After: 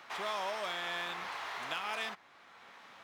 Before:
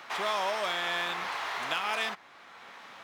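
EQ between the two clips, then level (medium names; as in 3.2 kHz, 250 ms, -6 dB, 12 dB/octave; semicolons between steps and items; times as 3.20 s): bass shelf 130 Hz +3.5 dB; -6.5 dB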